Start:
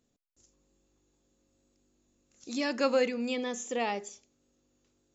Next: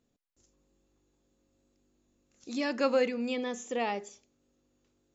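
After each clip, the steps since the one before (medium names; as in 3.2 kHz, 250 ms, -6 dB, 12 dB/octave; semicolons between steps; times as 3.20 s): treble shelf 5.9 kHz -8.5 dB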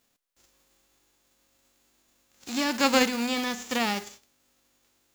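formants flattened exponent 0.3; trim +4.5 dB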